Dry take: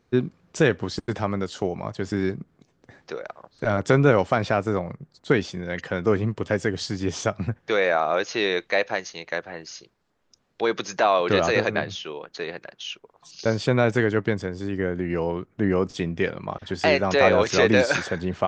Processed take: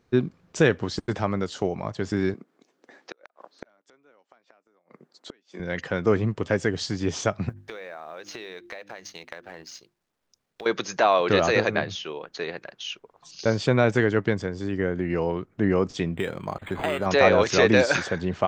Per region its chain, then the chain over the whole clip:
2.34–5.60 s: high-pass 260 Hz 24 dB/octave + dynamic bell 380 Hz, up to -5 dB, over -32 dBFS, Q 0.76 + inverted gate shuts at -22 dBFS, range -37 dB
7.49–10.66 s: companding laws mixed up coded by A + hum notches 50/100/150/200/250/300/350 Hz + compression 16:1, threshold -34 dBFS
16.13–17.06 s: treble shelf 3.1 kHz +7.5 dB + compression 4:1, threshold -21 dBFS + decimation joined by straight lines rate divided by 8×
whole clip: none

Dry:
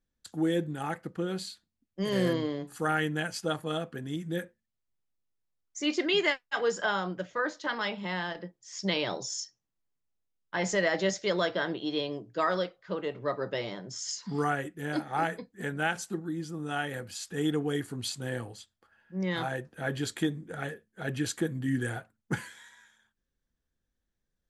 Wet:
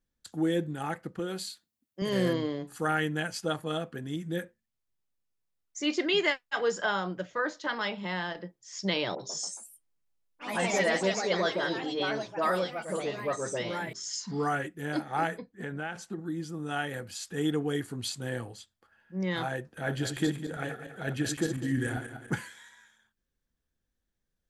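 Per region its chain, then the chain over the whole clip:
1.19–2.02 s: high-pass 250 Hz 6 dB/octave + treble shelf 10 kHz +10 dB
9.15–14.67 s: hum notches 50/100/150/200/250/300/350/400 Hz + phase dispersion highs, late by 50 ms, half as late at 1.5 kHz + ever faster or slower copies 139 ms, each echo +3 st, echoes 3, each echo -6 dB
15.38–16.19 s: low-pass 3.1 kHz 6 dB/octave + compression 3:1, threshold -32 dBFS
19.77–22.32 s: backward echo that repeats 100 ms, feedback 50%, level -7 dB + upward compressor, threshold -38 dBFS
whole clip: none

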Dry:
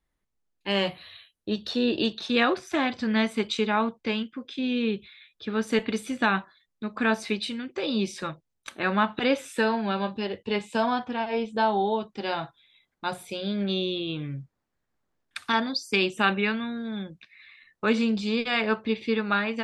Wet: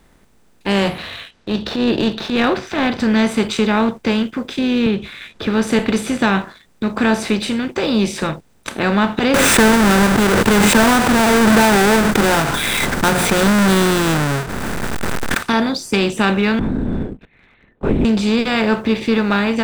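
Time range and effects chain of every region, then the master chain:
0.98–3.00 s: low-pass 4.6 kHz 24 dB/octave + transient shaper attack -11 dB, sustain -1 dB + tape noise reduction on one side only encoder only
4.86–5.47 s: low-pass 4 kHz + three bands compressed up and down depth 70%
9.34–15.43 s: square wave that keeps the level + peaking EQ 1.5 kHz +9 dB 0.87 oct + swell ahead of each attack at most 20 dB/s
16.59–18.05 s: band-pass filter 290 Hz, Q 1.6 + LPC vocoder at 8 kHz whisper
whole clip: spectral levelling over time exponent 0.6; bass shelf 390 Hz +8.5 dB; waveshaping leveller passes 1; trim -2.5 dB

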